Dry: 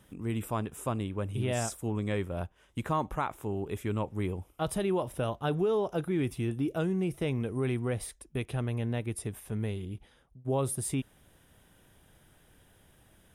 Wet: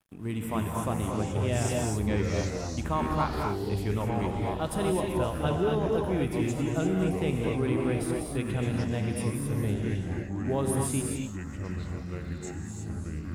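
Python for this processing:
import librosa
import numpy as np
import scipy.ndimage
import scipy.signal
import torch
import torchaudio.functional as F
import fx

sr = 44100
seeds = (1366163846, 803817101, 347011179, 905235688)

y = fx.rev_gated(x, sr, seeds[0], gate_ms=280, shape='rising', drr_db=0.0)
y = np.sign(y) * np.maximum(np.abs(y) - 10.0 ** (-55.5 / 20.0), 0.0)
y = fx.echo_pitch(y, sr, ms=194, semitones=-5, count=3, db_per_echo=-6.0)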